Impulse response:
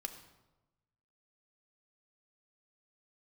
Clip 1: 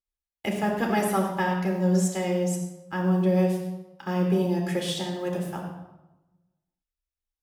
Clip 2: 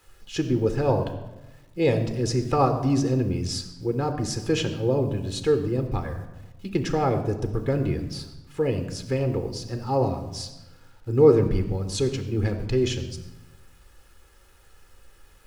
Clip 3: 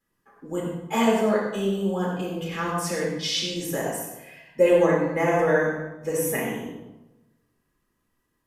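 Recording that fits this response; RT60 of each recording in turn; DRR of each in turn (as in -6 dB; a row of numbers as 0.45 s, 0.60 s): 2; 1.1 s, 1.1 s, 1.1 s; -0.5 dB, 6.5 dB, -6.0 dB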